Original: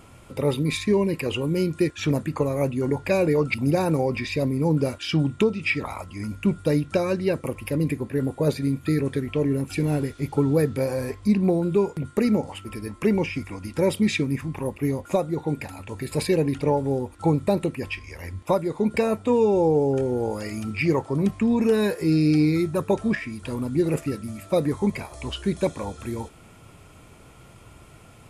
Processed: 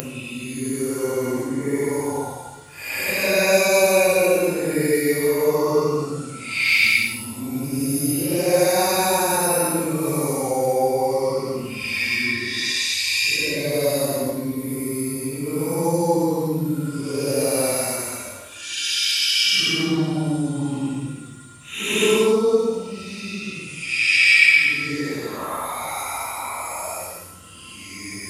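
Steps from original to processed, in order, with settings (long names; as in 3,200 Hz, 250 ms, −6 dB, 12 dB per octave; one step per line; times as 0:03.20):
extreme stretch with random phases 8.1×, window 0.10 s, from 0:02.69
mains hum 60 Hz, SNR 32 dB
RIAA equalisation recording
level +4.5 dB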